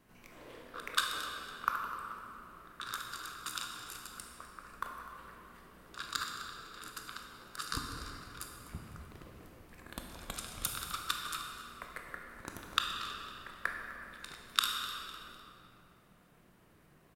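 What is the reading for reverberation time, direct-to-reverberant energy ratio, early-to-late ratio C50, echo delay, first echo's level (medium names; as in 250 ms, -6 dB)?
2.8 s, 1.0 dB, 2.5 dB, 252 ms, -15.5 dB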